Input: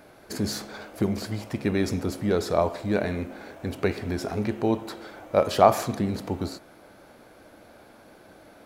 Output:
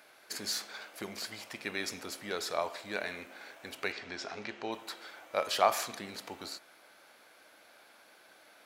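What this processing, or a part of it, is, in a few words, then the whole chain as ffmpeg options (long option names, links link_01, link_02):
filter by subtraction: -filter_complex "[0:a]asplit=2[link_01][link_02];[link_02]lowpass=2500,volume=-1[link_03];[link_01][link_03]amix=inputs=2:normalize=0,asettb=1/sr,asplit=3[link_04][link_05][link_06];[link_04]atrim=end=3.924[link_07];[link_05]atrim=start=3.92:end=4.72,asetpts=PTS-STARTPTS,afade=type=in:duration=0.004:curve=qsin,afade=type=out:start_time=0.796:duration=0.004:curve=qsin,lowpass=frequency=6400:width=0.5412,lowpass=frequency=6400:width=1.3066[link_08];[link_06]atrim=start=4.716[link_09];[link_07][link_08]acrossfade=duration=0.004:curve1=hsin:curve2=qsin[link_10];[link_10][link_09]acrossfade=duration=0.004:curve1=qsin:curve2=hsin,volume=-2dB"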